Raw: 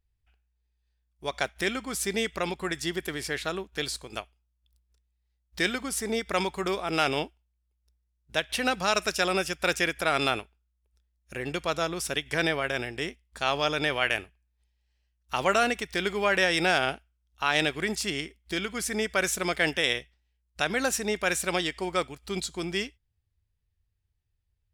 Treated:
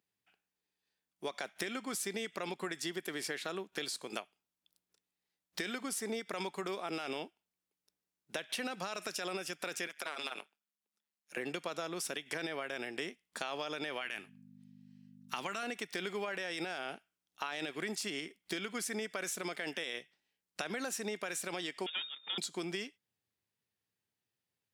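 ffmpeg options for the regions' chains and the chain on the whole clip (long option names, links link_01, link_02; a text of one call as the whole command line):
ffmpeg -i in.wav -filter_complex "[0:a]asettb=1/sr,asplit=3[link_01][link_02][link_03];[link_01]atrim=end=9.874[link_04];[link_02]atrim=start=9.87:end=11.37,asetpts=PTS-STARTPTS,afade=type=in:duration=0.004:curve=qsin,afade=type=out:start_time=1.496:duration=0.004:curve=qsin,highpass=frequency=840:poles=1,tremolo=f=150:d=0.947,acompressor=threshold=-33dB:ratio=2.5:attack=3.2:release=140:knee=1:detection=peak[link_05];[link_03]atrim=start=11.366[link_06];[link_04][link_05]acrossfade=duration=0.004:curve1=hsin:curve2=qsin[link_07];[link_07][link_06]acrossfade=duration=0.004:curve1=qsin:curve2=hsin,asettb=1/sr,asplit=3[link_08][link_09][link_10];[link_08]atrim=end=14.014[link_11];[link_09]atrim=start=14.01:end=15.63,asetpts=PTS-STARTPTS,afade=type=in:duration=0.004:curve=qsin,afade=type=out:start_time=1.616:duration=0.004:curve=qsin,equalizer=frequency=540:width_type=o:width=1.2:gain=-9,aeval=exprs='val(0)+0.00447*(sin(2*PI*50*n/s)+sin(2*PI*2*50*n/s)/2+sin(2*PI*3*50*n/s)/3+sin(2*PI*4*50*n/s)/4+sin(2*PI*5*50*n/s)/5)':channel_layout=same[link_12];[link_10]atrim=start=15.626[link_13];[link_11][link_12]acrossfade=duration=0.004:curve1=hsin:curve2=qsin[link_14];[link_14][link_13]acrossfade=duration=0.004:curve1=qsin:curve2=hsin,asettb=1/sr,asplit=3[link_15][link_16][link_17];[link_15]atrim=end=21.864[link_18];[link_16]atrim=start=21.86:end=22.38,asetpts=PTS-STARTPTS,afade=type=in:duration=0.004:curve=qsin,afade=type=out:start_time=0.516:duration=0.004:curve=qsin,aeval=exprs='clip(val(0),-1,0.0141)':channel_layout=same,lowpass=frequency=3100:width_type=q:width=0.5098,lowpass=frequency=3100:width_type=q:width=0.6013,lowpass=frequency=3100:width_type=q:width=0.9,lowpass=frequency=3100:width_type=q:width=2.563,afreqshift=-3700[link_19];[link_17]atrim=start=22.376[link_20];[link_18][link_19]acrossfade=duration=0.004:curve1=hsin:curve2=qsin[link_21];[link_21][link_20]acrossfade=duration=0.004:curve1=qsin:curve2=hsin,highpass=frequency=180:width=0.5412,highpass=frequency=180:width=1.3066,alimiter=limit=-18.5dB:level=0:latency=1:release=38,acompressor=threshold=-37dB:ratio=6,volume=1.5dB" out.wav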